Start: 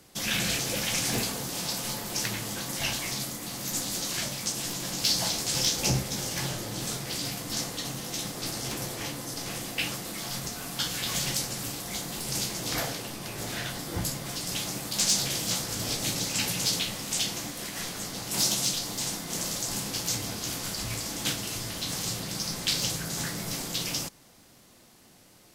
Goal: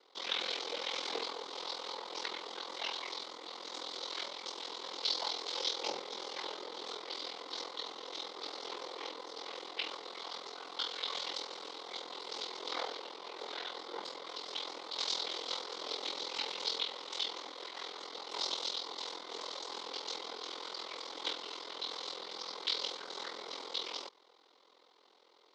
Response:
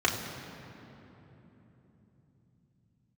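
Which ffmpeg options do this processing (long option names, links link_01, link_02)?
-af "aeval=exprs='val(0)*sin(2*PI*21*n/s)':channel_layout=same,highpass=frequency=430:width=0.5412,highpass=frequency=430:width=1.3066,equalizer=frequency=430:width_type=q:width=4:gain=4,equalizer=frequency=660:width_type=q:width=4:gain=-7,equalizer=frequency=1000:width_type=q:width=4:gain=4,equalizer=frequency=1700:width_type=q:width=4:gain=-10,equalizer=frequency=2600:width_type=q:width=4:gain=-9,equalizer=frequency=3900:width_type=q:width=4:gain=4,lowpass=frequency=4000:width=0.5412,lowpass=frequency=4000:width=1.3066"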